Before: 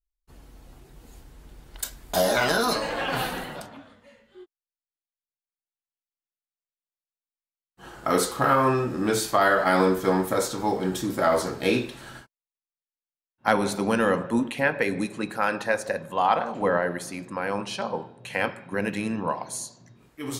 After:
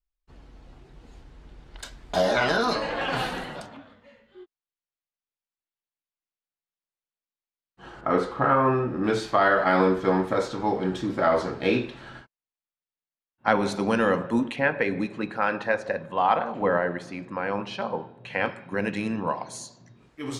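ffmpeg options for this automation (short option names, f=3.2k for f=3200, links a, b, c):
-af "asetnsamples=n=441:p=0,asendcmd='3.01 lowpass f 7100;3.77 lowpass f 4300;8.01 lowpass f 2000;9.04 lowpass f 3600;13.63 lowpass f 6200;14.56 lowpass f 3400;18.46 lowpass f 6200',lowpass=4.4k"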